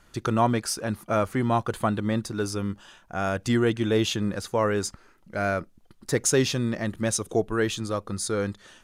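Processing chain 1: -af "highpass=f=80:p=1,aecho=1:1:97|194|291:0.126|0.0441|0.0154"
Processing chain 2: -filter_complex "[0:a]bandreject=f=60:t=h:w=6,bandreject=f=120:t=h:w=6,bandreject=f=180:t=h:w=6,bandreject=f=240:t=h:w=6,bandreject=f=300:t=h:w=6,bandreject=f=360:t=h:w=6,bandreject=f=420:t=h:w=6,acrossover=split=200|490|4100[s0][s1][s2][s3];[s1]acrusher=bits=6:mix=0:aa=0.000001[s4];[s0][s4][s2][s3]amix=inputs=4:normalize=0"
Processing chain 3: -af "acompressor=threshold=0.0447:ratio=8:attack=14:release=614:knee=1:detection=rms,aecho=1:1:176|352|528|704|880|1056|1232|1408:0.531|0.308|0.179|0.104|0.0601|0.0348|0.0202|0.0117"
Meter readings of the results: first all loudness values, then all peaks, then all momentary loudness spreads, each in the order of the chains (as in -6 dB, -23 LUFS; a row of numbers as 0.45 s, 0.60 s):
-26.5 LUFS, -27.0 LUFS, -32.5 LUFS; -9.5 dBFS, -8.5 dBFS, -18.5 dBFS; 9 LU, 8 LU, 4 LU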